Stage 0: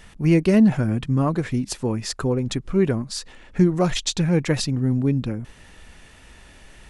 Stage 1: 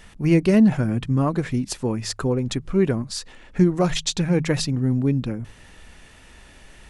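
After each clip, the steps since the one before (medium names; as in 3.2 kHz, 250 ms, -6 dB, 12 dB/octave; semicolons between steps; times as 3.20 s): de-hum 52.73 Hz, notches 3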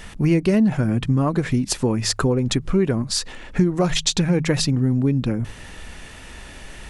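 compression 3:1, threshold -26 dBFS, peak gain reduction 11 dB; trim +8.5 dB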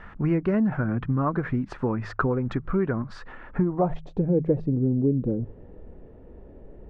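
low-pass sweep 1.4 kHz -> 460 Hz, 3.45–4.25 s; trim -6 dB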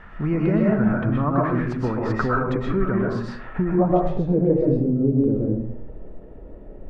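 reverberation RT60 0.70 s, pre-delay 85 ms, DRR -3.5 dB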